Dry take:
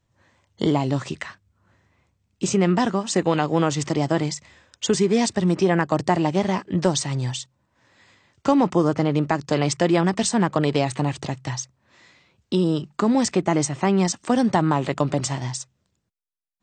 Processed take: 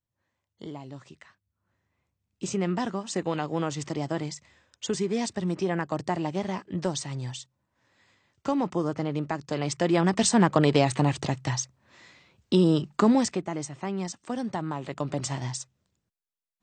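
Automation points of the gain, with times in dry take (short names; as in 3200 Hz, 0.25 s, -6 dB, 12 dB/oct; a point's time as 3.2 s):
1.22 s -19 dB
2.49 s -8.5 dB
9.57 s -8.5 dB
10.29 s 0 dB
13.08 s 0 dB
13.49 s -12 dB
14.8 s -12 dB
15.39 s -4 dB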